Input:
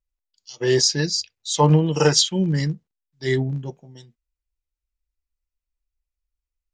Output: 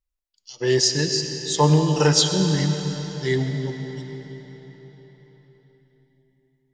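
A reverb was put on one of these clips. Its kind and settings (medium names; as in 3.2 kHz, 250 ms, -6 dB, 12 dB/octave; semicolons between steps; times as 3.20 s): algorithmic reverb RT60 4.7 s, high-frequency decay 0.85×, pre-delay 50 ms, DRR 5.5 dB; trim -1 dB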